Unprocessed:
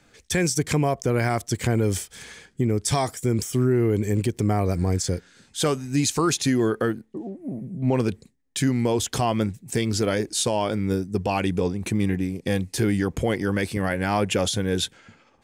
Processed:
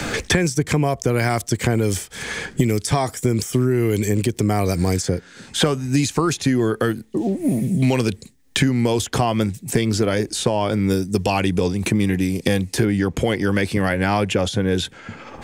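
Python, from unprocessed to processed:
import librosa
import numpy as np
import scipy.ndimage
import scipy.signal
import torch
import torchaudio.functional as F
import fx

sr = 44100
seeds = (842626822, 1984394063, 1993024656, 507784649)

y = fx.high_shelf(x, sr, hz=4400.0, db=-10.0, at=(12.85, 14.85))
y = fx.band_squash(y, sr, depth_pct=100)
y = F.gain(torch.from_numpy(y), 3.0).numpy()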